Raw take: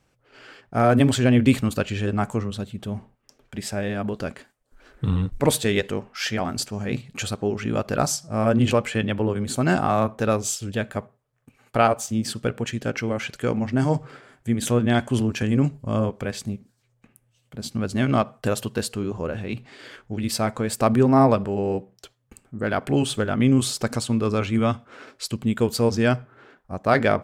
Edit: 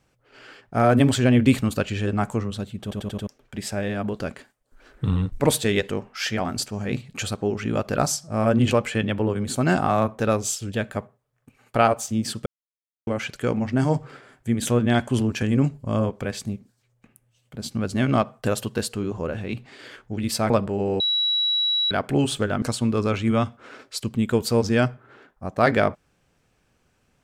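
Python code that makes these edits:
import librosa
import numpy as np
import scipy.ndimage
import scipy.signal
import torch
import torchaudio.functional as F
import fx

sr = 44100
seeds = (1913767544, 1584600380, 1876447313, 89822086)

y = fx.edit(x, sr, fx.stutter_over(start_s=2.82, slice_s=0.09, count=5),
    fx.silence(start_s=12.46, length_s=0.61),
    fx.cut(start_s=20.5, length_s=0.78),
    fx.bleep(start_s=21.78, length_s=0.91, hz=3900.0, db=-19.0),
    fx.cut(start_s=23.4, length_s=0.5), tone=tone)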